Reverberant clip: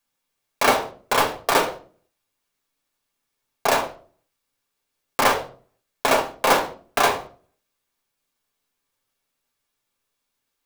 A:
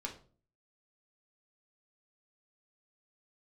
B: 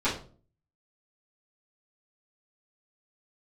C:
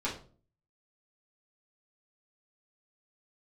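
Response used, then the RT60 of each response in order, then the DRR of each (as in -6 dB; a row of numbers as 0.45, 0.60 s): A; 0.40, 0.40, 0.40 s; -0.5, -13.5, -8.0 dB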